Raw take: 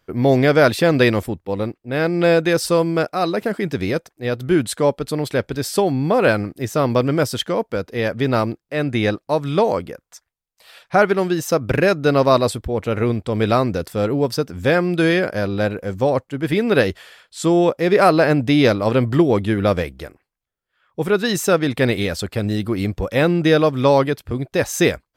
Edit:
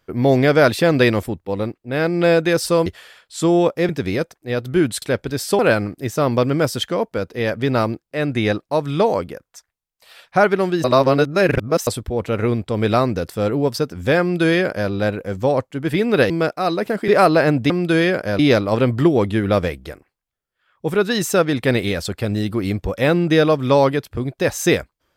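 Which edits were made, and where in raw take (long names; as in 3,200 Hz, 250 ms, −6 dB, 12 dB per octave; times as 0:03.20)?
0:02.86–0:03.64: swap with 0:16.88–0:17.91
0:04.77–0:05.27: remove
0:05.84–0:06.17: remove
0:11.42–0:12.45: reverse
0:14.79–0:15.48: duplicate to 0:18.53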